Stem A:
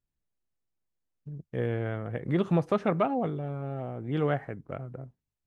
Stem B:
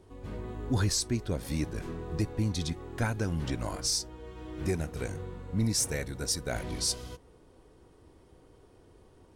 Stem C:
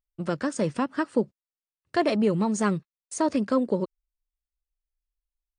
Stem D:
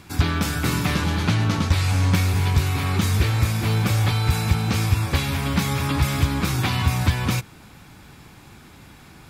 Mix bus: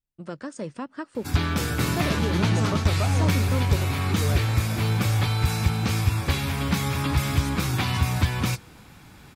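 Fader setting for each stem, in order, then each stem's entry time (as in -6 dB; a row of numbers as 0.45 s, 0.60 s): -5.5 dB, -15.0 dB, -7.5 dB, -2.5 dB; 0.00 s, 1.65 s, 0.00 s, 1.15 s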